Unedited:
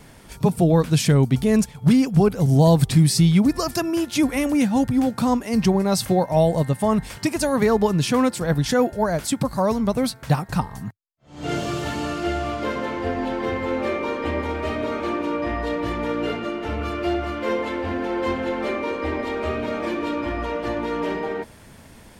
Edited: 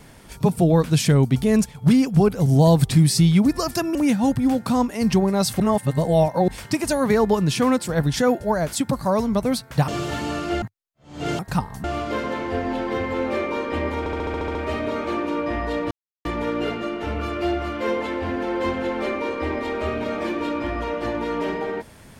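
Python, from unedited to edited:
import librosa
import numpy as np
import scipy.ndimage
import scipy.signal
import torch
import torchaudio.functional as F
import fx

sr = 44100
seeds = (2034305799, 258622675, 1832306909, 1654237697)

y = fx.edit(x, sr, fx.cut(start_s=3.95, length_s=0.52),
    fx.reverse_span(start_s=6.12, length_s=0.88),
    fx.swap(start_s=10.4, length_s=0.45, other_s=11.62, other_length_s=0.74),
    fx.stutter(start_s=14.51, slice_s=0.07, count=9),
    fx.insert_silence(at_s=15.87, length_s=0.34), tone=tone)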